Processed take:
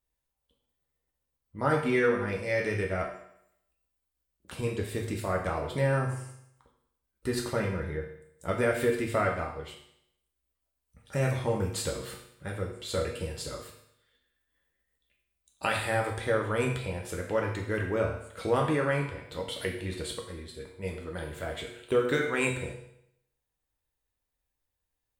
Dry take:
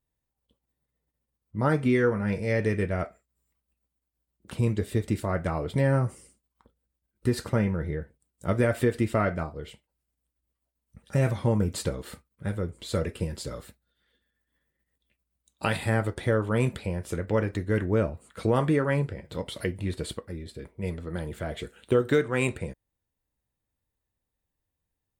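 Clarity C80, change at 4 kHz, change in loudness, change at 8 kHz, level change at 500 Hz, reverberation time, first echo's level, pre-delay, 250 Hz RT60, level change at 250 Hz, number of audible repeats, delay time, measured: 8.5 dB, +1.5 dB, −2.5 dB, +1.5 dB, −1.5 dB, 0.75 s, no echo audible, 8 ms, 0.75 s, −5.5 dB, no echo audible, no echo audible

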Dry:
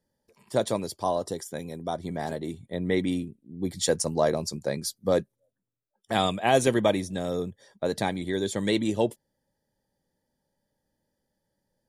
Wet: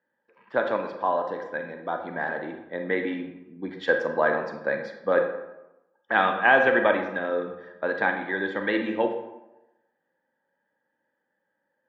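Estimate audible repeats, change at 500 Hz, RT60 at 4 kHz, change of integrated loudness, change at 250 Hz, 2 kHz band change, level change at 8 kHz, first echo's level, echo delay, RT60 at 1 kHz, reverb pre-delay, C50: no echo audible, +1.5 dB, 0.55 s, +2.0 dB, −3.0 dB, +12.0 dB, below −30 dB, no echo audible, no echo audible, 1.0 s, 29 ms, 6.0 dB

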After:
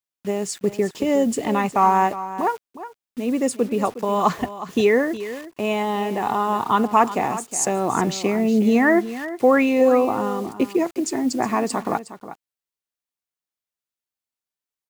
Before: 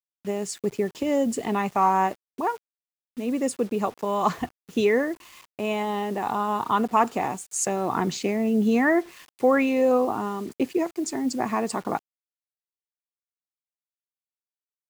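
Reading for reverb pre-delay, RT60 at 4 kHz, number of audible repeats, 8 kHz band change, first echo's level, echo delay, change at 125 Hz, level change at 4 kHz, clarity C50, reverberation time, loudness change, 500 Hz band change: no reverb audible, no reverb audible, 1, +4.0 dB, −13.5 dB, 363 ms, +4.0 dB, +4.0 dB, no reverb audible, no reverb audible, +4.0 dB, +4.0 dB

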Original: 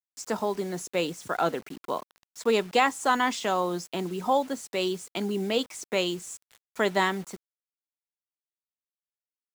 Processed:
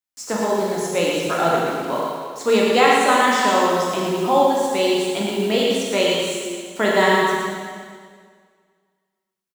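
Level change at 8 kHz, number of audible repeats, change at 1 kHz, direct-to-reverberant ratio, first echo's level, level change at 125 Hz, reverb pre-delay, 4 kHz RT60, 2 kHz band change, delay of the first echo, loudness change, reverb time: +9.0 dB, 1, +9.0 dB, −5.0 dB, −5.0 dB, +7.5 dB, 7 ms, 1.8 s, +9.5 dB, 115 ms, +9.0 dB, 1.9 s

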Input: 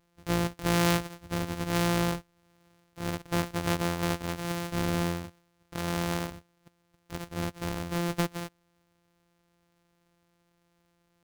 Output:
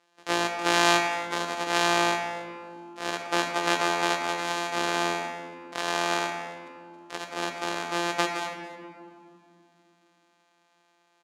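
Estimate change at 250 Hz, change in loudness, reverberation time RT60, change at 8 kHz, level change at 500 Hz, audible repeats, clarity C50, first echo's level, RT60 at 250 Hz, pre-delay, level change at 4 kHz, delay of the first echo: −3.0 dB, +4.0 dB, 2.4 s, +4.5 dB, +4.0 dB, 1, 4.5 dB, −17.5 dB, 4.0 s, 3 ms, +8.0 dB, 282 ms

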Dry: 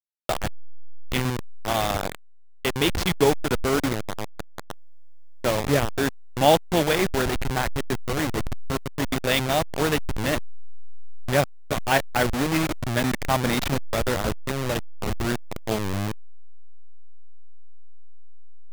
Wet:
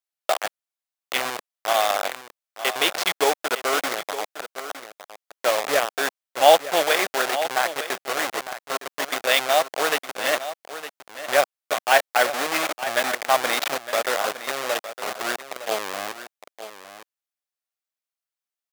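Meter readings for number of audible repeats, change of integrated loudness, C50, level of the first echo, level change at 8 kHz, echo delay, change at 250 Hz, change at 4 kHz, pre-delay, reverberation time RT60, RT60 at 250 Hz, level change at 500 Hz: 1, +2.0 dB, no reverb audible, −12.5 dB, +4.0 dB, 911 ms, −11.5 dB, +4.0 dB, no reverb audible, no reverb audible, no reverb audible, +1.5 dB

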